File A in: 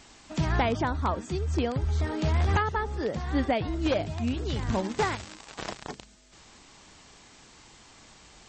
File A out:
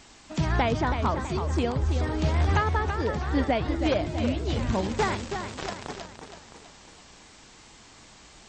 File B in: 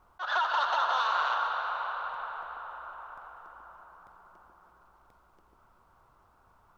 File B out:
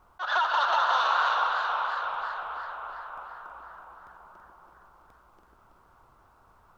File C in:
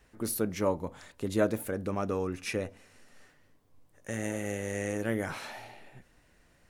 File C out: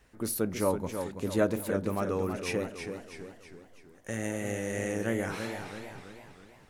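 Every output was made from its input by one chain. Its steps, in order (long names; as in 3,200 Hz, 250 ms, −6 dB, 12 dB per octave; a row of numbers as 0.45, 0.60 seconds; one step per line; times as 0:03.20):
feedback echo with a swinging delay time 327 ms, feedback 49%, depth 109 cents, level −7.5 dB
normalise the peak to −12 dBFS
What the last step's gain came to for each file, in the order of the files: +1.0, +3.0, +0.5 decibels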